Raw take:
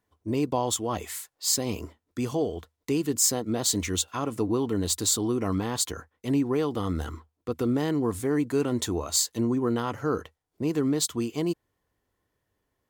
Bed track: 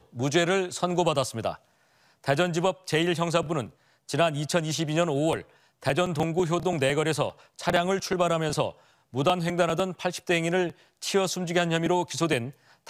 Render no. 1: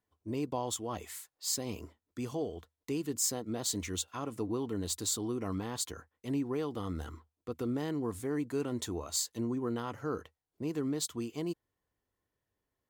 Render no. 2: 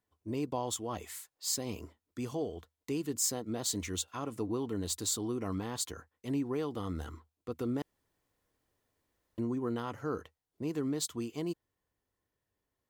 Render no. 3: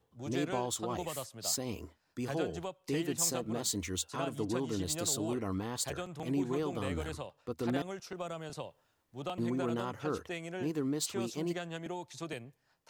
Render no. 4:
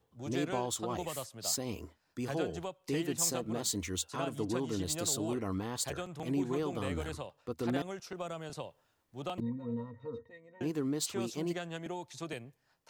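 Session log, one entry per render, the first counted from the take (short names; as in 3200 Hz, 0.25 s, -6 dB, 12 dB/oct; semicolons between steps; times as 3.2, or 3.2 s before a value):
gain -8.5 dB
7.82–9.38 room tone
add bed track -16 dB
9.4–10.61 octave resonator A#, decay 0.1 s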